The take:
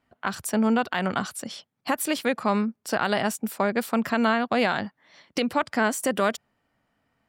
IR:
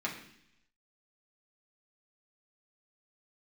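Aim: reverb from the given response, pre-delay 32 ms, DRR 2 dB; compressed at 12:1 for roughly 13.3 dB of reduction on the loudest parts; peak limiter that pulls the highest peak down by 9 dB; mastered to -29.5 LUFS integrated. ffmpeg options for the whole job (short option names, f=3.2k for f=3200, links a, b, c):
-filter_complex "[0:a]acompressor=threshold=-32dB:ratio=12,alimiter=level_in=2.5dB:limit=-24dB:level=0:latency=1,volume=-2.5dB,asplit=2[a][b];[1:a]atrim=start_sample=2205,adelay=32[c];[b][c]afir=irnorm=-1:irlink=0,volume=-7dB[d];[a][d]amix=inputs=2:normalize=0,volume=7dB"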